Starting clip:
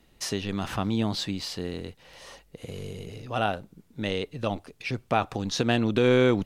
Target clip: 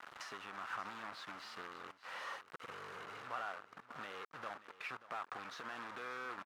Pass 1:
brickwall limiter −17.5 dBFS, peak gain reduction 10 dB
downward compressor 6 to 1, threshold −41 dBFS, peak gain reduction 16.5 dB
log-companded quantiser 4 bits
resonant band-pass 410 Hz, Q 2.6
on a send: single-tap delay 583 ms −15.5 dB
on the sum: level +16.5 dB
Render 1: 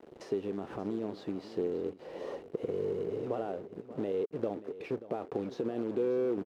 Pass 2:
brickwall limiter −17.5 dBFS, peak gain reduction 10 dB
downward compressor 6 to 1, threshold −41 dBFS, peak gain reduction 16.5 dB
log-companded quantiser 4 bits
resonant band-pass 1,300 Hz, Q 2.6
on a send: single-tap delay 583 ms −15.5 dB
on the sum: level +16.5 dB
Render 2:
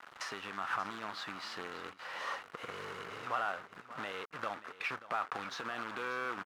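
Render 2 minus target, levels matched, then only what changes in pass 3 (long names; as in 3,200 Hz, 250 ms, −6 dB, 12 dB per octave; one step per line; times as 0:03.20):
downward compressor: peak gain reduction −8.5 dB
change: downward compressor 6 to 1, threshold −51 dBFS, peak gain reduction 25 dB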